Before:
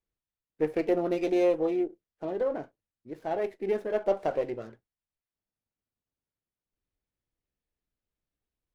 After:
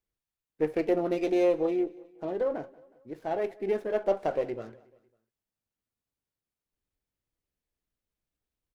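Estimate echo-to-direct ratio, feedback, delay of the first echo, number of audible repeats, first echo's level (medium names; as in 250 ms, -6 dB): -21.5 dB, 50%, 183 ms, 3, -22.5 dB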